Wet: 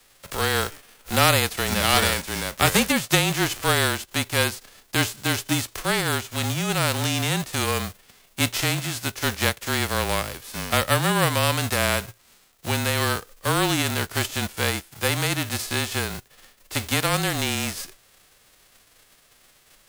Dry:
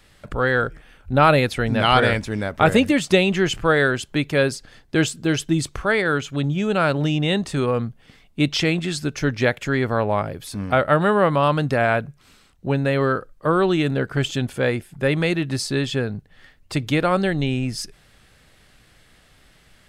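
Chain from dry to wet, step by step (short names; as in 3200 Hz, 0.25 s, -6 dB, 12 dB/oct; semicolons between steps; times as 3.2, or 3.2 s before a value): spectral whitening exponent 0.3; frequency shift -30 Hz; gain -3.5 dB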